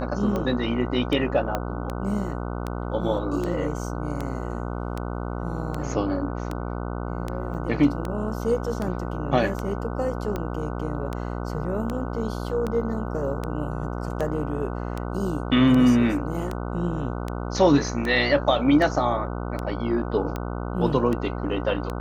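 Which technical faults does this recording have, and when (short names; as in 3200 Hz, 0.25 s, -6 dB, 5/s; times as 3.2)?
buzz 60 Hz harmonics 25 -30 dBFS
tick 78 rpm -16 dBFS
1.55 pop -12 dBFS
7.54–7.55 gap 6.3 ms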